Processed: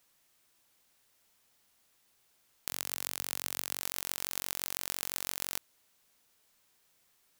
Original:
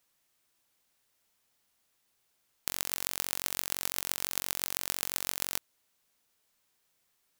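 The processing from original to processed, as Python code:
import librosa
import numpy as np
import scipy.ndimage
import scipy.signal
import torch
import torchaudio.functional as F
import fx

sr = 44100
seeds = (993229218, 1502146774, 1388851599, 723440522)

p1 = fx.highpass(x, sr, hz=95.0, slope=12, at=(2.71, 3.81))
p2 = fx.over_compress(p1, sr, threshold_db=-45.0, ratio=-1.0)
p3 = p1 + (p2 * librosa.db_to_amplitude(-2.0))
y = p3 * librosa.db_to_amplitude(-5.0)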